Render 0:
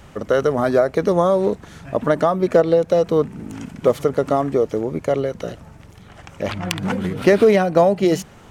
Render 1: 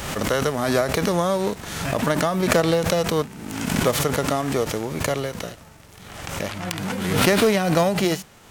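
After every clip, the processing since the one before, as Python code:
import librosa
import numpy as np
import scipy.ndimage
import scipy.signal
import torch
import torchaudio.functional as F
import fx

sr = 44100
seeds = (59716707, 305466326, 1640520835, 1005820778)

y = fx.envelope_flatten(x, sr, power=0.6)
y = fx.pre_swell(y, sr, db_per_s=41.0)
y = y * librosa.db_to_amplitude(-5.5)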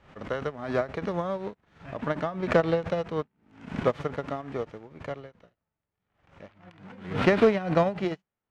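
y = scipy.signal.sosfilt(scipy.signal.butter(2, 2400.0, 'lowpass', fs=sr, output='sos'), x)
y = fx.upward_expand(y, sr, threshold_db=-41.0, expansion=2.5)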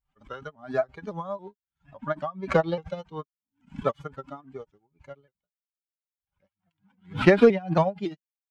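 y = fx.bin_expand(x, sr, power=2.0)
y = y + 0.39 * np.pad(y, (int(5.0 * sr / 1000.0), 0))[:len(y)]
y = fx.vibrato_shape(y, sr, shape='saw_up', rate_hz=3.6, depth_cents=100.0)
y = y * librosa.db_to_amplitude(4.5)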